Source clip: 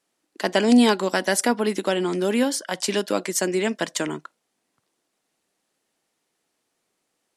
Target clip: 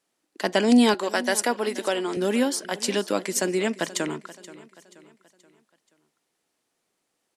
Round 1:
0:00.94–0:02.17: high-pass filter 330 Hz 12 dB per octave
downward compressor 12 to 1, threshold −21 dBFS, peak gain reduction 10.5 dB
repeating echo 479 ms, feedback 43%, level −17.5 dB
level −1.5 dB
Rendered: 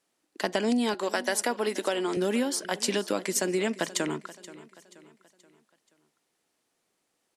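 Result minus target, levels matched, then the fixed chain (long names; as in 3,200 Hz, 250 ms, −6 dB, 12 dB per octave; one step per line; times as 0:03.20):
downward compressor: peak gain reduction +10.5 dB
0:00.94–0:02.17: high-pass filter 330 Hz 12 dB per octave
repeating echo 479 ms, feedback 43%, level −17.5 dB
level −1.5 dB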